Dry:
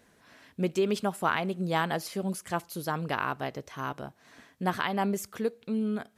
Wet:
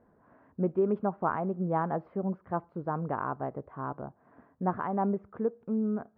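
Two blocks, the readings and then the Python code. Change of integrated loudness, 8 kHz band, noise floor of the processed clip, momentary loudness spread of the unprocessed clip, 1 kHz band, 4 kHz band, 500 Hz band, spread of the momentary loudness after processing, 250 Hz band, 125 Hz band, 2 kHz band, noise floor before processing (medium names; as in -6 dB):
-1.0 dB, under -35 dB, -66 dBFS, 9 LU, -1.0 dB, under -30 dB, 0.0 dB, 9 LU, 0.0 dB, 0.0 dB, -10.5 dB, -63 dBFS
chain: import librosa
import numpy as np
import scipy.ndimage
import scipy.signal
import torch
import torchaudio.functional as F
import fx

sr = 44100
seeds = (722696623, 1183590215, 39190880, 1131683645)

y = scipy.signal.sosfilt(scipy.signal.butter(4, 1200.0, 'lowpass', fs=sr, output='sos'), x)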